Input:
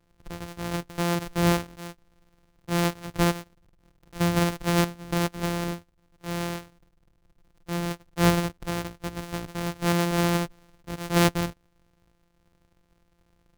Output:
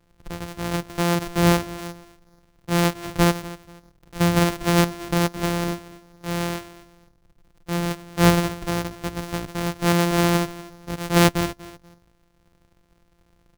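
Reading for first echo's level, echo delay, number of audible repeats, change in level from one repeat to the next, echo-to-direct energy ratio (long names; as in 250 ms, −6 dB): −17.5 dB, 241 ms, 2, −11.5 dB, −17.0 dB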